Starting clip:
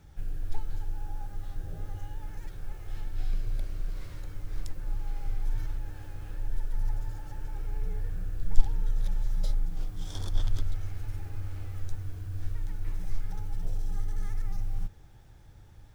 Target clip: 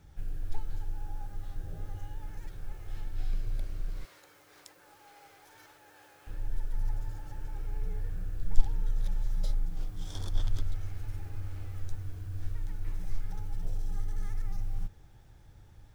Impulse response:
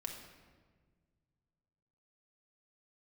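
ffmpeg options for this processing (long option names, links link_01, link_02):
-filter_complex "[0:a]asettb=1/sr,asplit=3[link_01][link_02][link_03];[link_01]atrim=end=4.054[link_04];[link_02]atrim=start=4.05:end=6.27,asetpts=PTS-STARTPTS,afade=type=in:duration=0.004:curve=qsin,afade=type=out:start_time=2.216:duration=0.004:curve=qsin,highpass=510[link_05];[link_03]atrim=start=6.266[link_06];[link_04][link_05]acrossfade=duration=0.004:curve1=hsin:curve2=qsin[link_07];[link_07][link_06]acrossfade=duration=0.004:curve1=qsin:curve2=hsin,volume=-2dB"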